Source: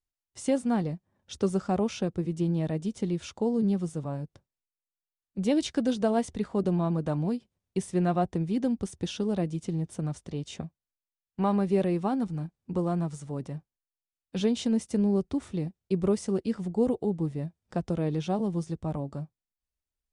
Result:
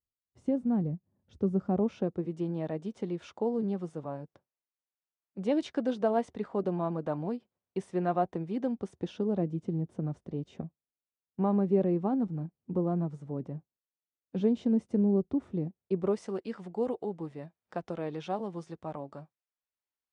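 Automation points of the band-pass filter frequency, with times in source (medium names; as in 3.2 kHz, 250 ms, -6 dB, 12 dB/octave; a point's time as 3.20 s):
band-pass filter, Q 0.56
1.46 s 150 Hz
2.38 s 750 Hz
8.69 s 750 Hz
9.50 s 310 Hz
15.62 s 310 Hz
16.32 s 1.2 kHz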